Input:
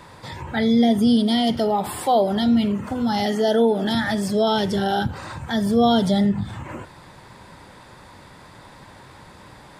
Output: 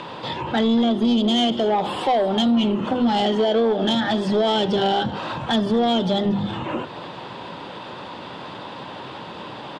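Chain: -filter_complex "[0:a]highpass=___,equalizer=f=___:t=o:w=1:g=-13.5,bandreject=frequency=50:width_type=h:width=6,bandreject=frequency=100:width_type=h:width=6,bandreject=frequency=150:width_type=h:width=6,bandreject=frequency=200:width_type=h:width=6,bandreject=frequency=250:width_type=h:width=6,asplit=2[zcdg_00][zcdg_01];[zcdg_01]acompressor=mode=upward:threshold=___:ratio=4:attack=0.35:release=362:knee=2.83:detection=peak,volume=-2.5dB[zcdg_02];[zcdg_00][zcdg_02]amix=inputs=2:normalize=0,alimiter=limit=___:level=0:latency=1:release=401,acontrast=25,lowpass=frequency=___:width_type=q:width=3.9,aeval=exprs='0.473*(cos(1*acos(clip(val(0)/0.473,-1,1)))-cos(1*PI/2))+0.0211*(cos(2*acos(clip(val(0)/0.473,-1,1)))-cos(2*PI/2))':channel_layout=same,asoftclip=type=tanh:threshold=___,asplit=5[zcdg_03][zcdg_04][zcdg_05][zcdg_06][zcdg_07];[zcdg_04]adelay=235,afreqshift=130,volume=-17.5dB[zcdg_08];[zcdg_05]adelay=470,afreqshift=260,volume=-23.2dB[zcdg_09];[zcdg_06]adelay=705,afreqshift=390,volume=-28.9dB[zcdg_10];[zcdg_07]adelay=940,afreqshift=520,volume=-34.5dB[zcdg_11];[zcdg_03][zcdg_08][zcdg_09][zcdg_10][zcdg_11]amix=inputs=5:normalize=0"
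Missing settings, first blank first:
190, 2100, -33dB, -14.5dB, 2900, -12.5dB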